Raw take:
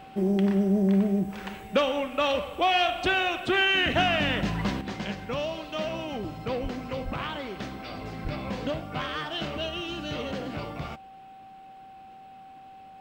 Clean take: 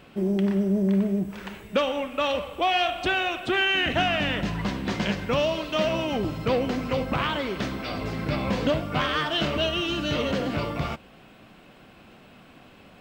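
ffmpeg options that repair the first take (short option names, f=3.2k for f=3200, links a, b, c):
-filter_complex "[0:a]bandreject=f=770:w=30,asplit=3[a][b][c];[a]afade=t=out:st=6.62:d=0.02[d];[b]highpass=f=140:w=0.5412,highpass=f=140:w=1.3066,afade=t=in:st=6.62:d=0.02,afade=t=out:st=6.74:d=0.02[e];[c]afade=t=in:st=6.74:d=0.02[f];[d][e][f]amix=inputs=3:normalize=0,asplit=3[g][h][i];[g]afade=t=out:st=7.04:d=0.02[j];[h]highpass=f=140:w=0.5412,highpass=f=140:w=1.3066,afade=t=in:st=7.04:d=0.02,afade=t=out:st=7.16:d=0.02[k];[i]afade=t=in:st=7.16:d=0.02[l];[j][k][l]amix=inputs=3:normalize=0,asplit=3[m][n][o];[m]afade=t=out:st=8.23:d=0.02[p];[n]highpass=f=140:w=0.5412,highpass=f=140:w=1.3066,afade=t=in:st=8.23:d=0.02,afade=t=out:st=8.35:d=0.02[q];[o]afade=t=in:st=8.35:d=0.02[r];[p][q][r]amix=inputs=3:normalize=0,asetnsamples=n=441:p=0,asendcmd='4.81 volume volume 7dB',volume=0dB"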